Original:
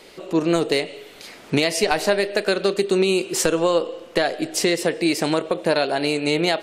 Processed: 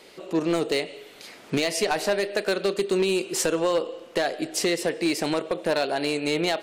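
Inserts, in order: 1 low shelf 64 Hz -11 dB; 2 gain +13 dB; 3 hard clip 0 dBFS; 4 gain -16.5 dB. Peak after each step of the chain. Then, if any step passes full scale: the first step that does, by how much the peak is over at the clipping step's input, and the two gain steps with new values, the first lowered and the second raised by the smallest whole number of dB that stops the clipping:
-5.5, +7.5, 0.0, -16.5 dBFS; step 2, 7.5 dB; step 2 +5 dB, step 4 -8.5 dB

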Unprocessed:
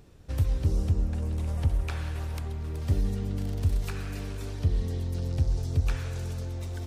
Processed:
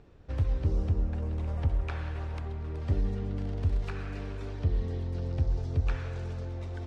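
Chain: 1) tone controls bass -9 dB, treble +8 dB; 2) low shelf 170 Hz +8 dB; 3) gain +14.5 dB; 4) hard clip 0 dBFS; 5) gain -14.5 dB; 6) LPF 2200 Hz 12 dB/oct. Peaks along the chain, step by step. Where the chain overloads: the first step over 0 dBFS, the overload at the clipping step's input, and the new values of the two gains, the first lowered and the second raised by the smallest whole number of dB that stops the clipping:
-18.5, -16.5, -2.0, -2.0, -16.5, -18.0 dBFS; no overload

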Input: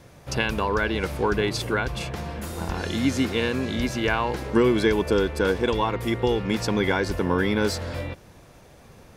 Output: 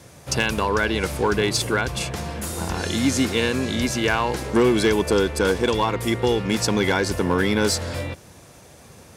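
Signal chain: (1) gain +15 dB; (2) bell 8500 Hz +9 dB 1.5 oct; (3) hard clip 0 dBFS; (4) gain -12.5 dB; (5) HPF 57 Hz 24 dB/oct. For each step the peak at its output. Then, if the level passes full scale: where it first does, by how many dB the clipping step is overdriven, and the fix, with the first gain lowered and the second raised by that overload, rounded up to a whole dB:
+6.5, +6.5, 0.0, -12.5, -7.5 dBFS; step 1, 6.5 dB; step 1 +8 dB, step 4 -5.5 dB

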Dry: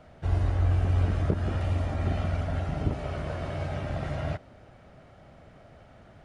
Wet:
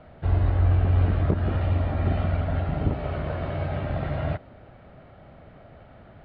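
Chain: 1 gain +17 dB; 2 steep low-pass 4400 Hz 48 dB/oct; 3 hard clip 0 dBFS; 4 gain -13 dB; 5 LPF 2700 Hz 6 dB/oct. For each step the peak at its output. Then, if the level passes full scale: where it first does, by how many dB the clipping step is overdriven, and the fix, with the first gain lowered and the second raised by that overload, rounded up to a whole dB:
+4.0, +4.0, 0.0, -13.0, -13.0 dBFS; step 1, 4.0 dB; step 1 +13 dB, step 4 -9 dB

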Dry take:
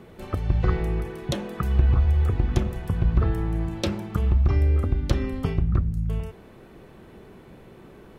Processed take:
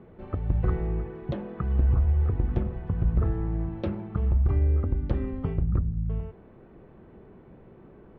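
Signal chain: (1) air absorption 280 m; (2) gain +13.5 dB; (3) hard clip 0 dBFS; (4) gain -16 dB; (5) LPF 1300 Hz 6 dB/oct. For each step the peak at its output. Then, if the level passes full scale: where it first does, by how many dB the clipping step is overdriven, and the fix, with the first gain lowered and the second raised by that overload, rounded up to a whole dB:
-8.0, +5.5, 0.0, -16.0, -16.0 dBFS; step 2, 5.5 dB; step 2 +7.5 dB, step 4 -10 dB

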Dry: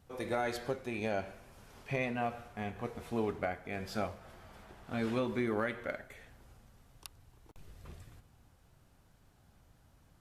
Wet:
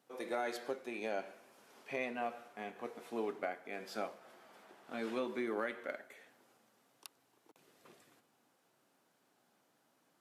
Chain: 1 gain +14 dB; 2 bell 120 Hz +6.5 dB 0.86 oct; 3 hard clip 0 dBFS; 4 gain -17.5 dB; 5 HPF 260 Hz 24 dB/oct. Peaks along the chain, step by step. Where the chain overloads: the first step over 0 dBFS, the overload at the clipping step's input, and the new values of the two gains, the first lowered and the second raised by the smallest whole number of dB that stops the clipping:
-7.0, -5.5, -5.5, -23.0, -24.5 dBFS; no overload

